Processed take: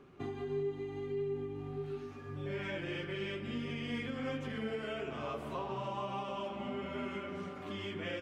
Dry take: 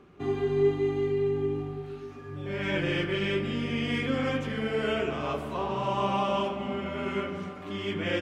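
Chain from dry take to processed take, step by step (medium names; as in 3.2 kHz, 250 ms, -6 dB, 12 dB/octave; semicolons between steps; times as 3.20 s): compression, threshold -33 dBFS, peak gain reduction 13.5 dB; flange 1.6 Hz, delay 7.1 ms, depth 2 ms, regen +51%; trim +1 dB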